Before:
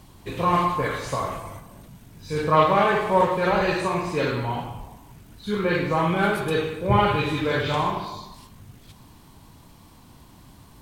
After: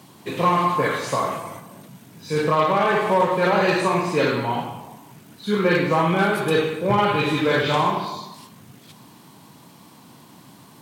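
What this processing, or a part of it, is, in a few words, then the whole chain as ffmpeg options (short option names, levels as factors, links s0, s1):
limiter into clipper: -af "alimiter=limit=0.266:level=0:latency=1:release=247,asoftclip=type=hard:threshold=0.178,highpass=f=140:w=0.5412,highpass=f=140:w=1.3066,volume=1.68"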